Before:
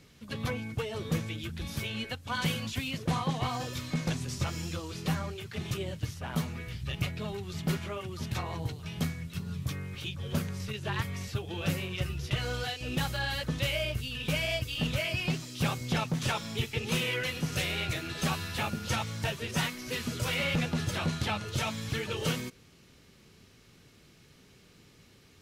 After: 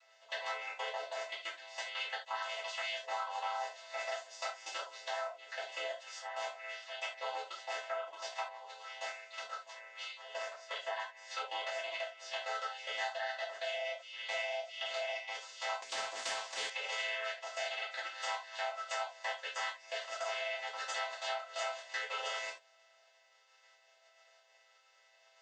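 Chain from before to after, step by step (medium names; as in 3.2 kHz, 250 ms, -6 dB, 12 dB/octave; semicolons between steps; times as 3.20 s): vocoder on a held chord minor triad, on A3; level held to a coarse grid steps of 18 dB; elliptic high-pass 630 Hz, stop band 60 dB; compression 12:1, threshold -50 dBFS, peak gain reduction 16.5 dB; band-stop 2.3 kHz, Q 9.1; gated-style reverb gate 110 ms falling, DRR -7 dB; 15.82–16.70 s: spectrum-flattening compressor 2:1; trim +8 dB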